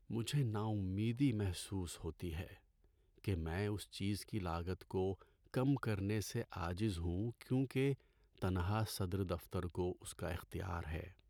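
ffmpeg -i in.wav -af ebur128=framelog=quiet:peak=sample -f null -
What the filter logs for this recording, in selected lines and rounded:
Integrated loudness:
  I:         -40.7 LUFS
  Threshold: -50.8 LUFS
Loudness range:
  LRA:         3.5 LU
  Threshold: -61.0 LUFS
  LRA low:   -43.4 LUFS
  LRA high:  -39.9 LUFS
Sample peak:
  Peak:      -24.6 dBFS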